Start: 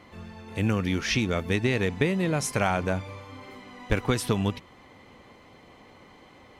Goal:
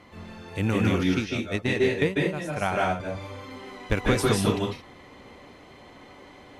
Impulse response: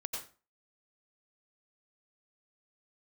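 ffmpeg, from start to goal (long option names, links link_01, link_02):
-filter_complex "[0:a]asettb=1/sr,asplit=3[link_01][link_02][link_03];[link_01]atrim=end=1.034[link_04];[link_02]atrim=start=1.03:end=3,asetpts=PTS-STARTPTS,afade=type=in:duration=0.004:curve=qsin,afade=type=out:start_time=1.966:duration=0.004:curve=qsin,agate=range=-17dB:threshold=-23dB:ratio=16:detection=peak[link_05];[link_03]atrim=start=2.996[link_06];[link_04][link_05]acrossfade=duration=0.004:curve1=hsin:curve2=qsin[link_07];[link_07][link_06]acrossfade=duration=0.004:curve1=qsin:curve2=hsin[link_08];[1:a]atrim=start_sample=2205,atrim=end_sample=6174,asetrate=26460,aresample=44100[link_09];[link_08][link_09]afir=irnorm=-1:irlink=0"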